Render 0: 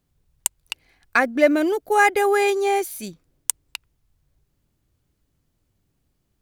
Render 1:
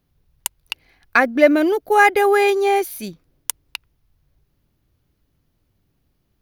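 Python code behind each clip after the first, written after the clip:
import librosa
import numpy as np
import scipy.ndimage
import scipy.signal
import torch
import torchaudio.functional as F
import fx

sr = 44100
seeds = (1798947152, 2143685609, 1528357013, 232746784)

y = fx.peak_eq(x, sr, hz=7800.0, db=-11.5, octaves=0.47)
y = y * librosa.db_to_amplitude(3.5)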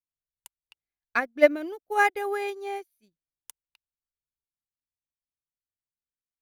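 y = fx.upward_expand(x, sr, threshold_db=-33.0, expansion=2.5)
y = y * librosa.db_to_amplitude(-3.5)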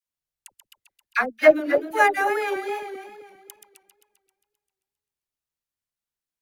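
y = fx.reverse_delay_fb(x, sr, ms=132, feedback_pct=62, wet_db=-7)
y = fx.wow_flutter(y, sr, seeds[0], rate_hz=2.1, depth_cents=77.0)
y = fx.dispersion(y, sr, late='lows', ms=62.0, hz=710.0)
y = y * librosa.db_to_amplitude(3.0)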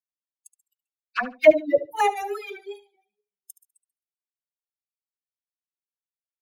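y = fx.bin_expand(x, sr, power=3.0)
y = fx.env_flanger(y, sr, rest_ms=4.7, full_db=-21.5)
y = fx.echo_feedback(y, sr, ms=72, feedback_pct=18, wet_db=-15.0)
y = y * librosa.db_to_amplitude(4.5)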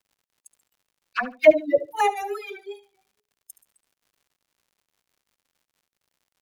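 y = fx.dmg_crackle(x, sr, seeds[1], per_s=140.0, level_db=-54.0)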